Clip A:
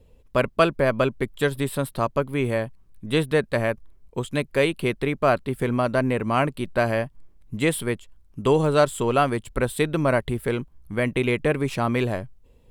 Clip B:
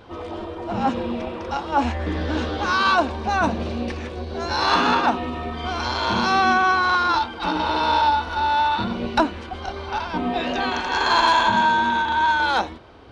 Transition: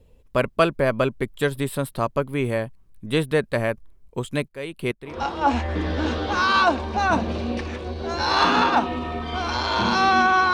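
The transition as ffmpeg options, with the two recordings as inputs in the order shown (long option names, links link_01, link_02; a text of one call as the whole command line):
ffmpeg -i cue0.wav -i cue1.wav -filter_complex "[0:a]asettb=1/sr,asplit=3[link_01][link_02][link_03];[link_01]atrim=end=4.484[link_04];[link_02]atrim=start=4.48:end=5.21,asetpts=PTS-STARTPTS,afade=type=in:duration=0.004:curve=qsin,afade=type=out:start_time=0.726:duration=0.004:curve=qsin,aeval=exprs='val(0)*pow(10,-18*if(lt(mod(-2.3*n/s,1),2*abs(-2.3)/1000),1-mod(-2.3*n/s,1)/(2*abs(-2.3)/1000),(mod(-2.3*n/s,1)-2*abs(-2.3)/1000)/(1-2*abs(-2.3)/1000))/20)':channel_layout=same[link_05];[link_03]atrim=start=5.206[link_06];[link_04][link_05]acrossfade=duration=0.004:curve1=hsin:curve2=qsin[link_07];[link_07][link_06]acrossfade=duration=0.004:curve1=qsin:curve2=hsin,apad=whole_dur=10.53,atrim=end=10.53,atrim=end=5.21,asetpts=PTS-STARTPTS[link_08];[1:a]atrim=start=1.34:end=6.84,asetpts=PTS-STARTPTS[link_09];[link_08][link_09]acrossfade=duration=0.18:curve1=tri:curve2=tri" out.wav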